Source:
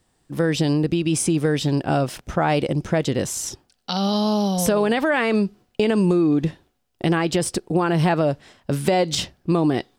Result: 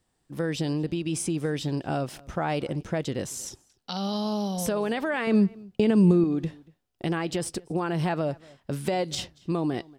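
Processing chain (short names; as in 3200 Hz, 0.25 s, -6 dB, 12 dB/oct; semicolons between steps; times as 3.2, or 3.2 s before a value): 5.27–6.24 bell 130 Hz +10.5 dB 2.7 oct; outdoor echo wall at 40 m, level -24 dB; gain -8 dB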